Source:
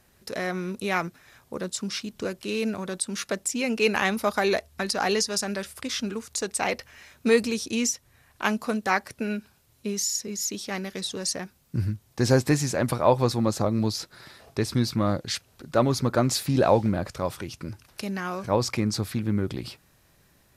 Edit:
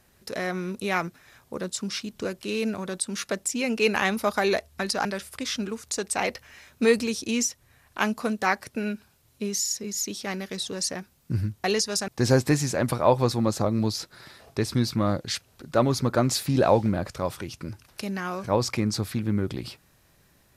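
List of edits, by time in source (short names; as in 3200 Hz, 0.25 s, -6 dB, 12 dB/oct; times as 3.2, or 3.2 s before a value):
5.05–5.49 move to 12.08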